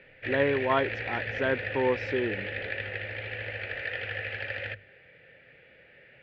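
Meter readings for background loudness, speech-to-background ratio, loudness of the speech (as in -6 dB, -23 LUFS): -33.5 LUFS, 4.0 dB, -29.5 LUFS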